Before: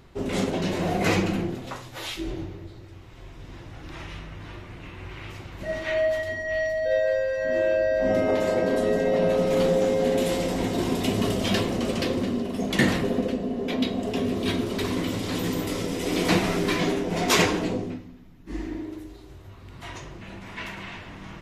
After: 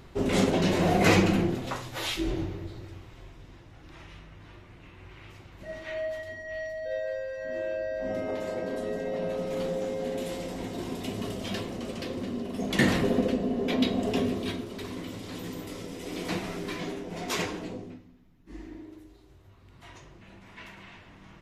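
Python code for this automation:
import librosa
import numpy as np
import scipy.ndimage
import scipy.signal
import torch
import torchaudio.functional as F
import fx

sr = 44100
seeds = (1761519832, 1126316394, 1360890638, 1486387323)

y = fx.gain(x, sr, db=fx.line((2.87, 2.0), (3.62, -9.5), (12.04, -9.5), (13.04, 0.0), (14.18, 0.0), (14.66, -10.5)))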